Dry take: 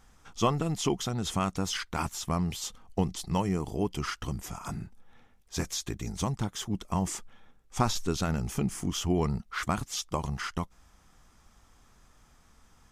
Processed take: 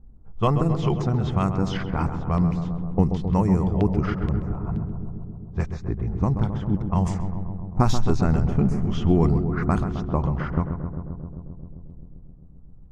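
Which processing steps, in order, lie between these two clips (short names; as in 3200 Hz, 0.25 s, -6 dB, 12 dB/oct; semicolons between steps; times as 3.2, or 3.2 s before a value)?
low-pass opened by the level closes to 340 Hz, open at -23 dBFS; tilt -2 dB/oct; LFO notch square 2.1 Hz 280–3200 Hz; darkening echo 0.132 s, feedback 82%, low-pass 1400 Hz, level -7.5 dB; gain +3.5 dB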